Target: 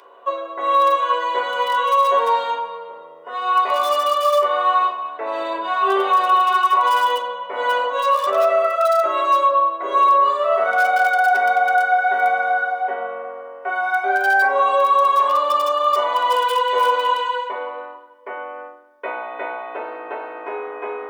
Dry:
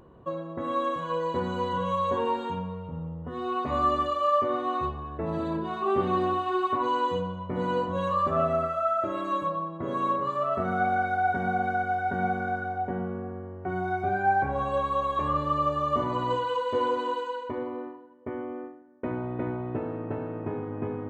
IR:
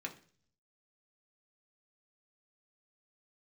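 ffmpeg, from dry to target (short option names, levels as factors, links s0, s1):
-filter_complex "[0:a]acrossover=split=2100[s0][s1];[s1]aeval=exprs='(mod(100*val(0)+1,2)-1)/100':c=same[s2];[s0][s2]amix=inputs=2:normalize=0,highpass=f=610:w=0.5412,highpass=f=610:w=1.3066[s3];[1:a]atrim=start_sample=2205,asetrate=61740,aresample=44100[s4];[s3][s4]afir=irnorm=-1:irlink=0,alimiter=level_in=18.8:limit=0.891:release=50:level=0:latency=1,volume=0.447"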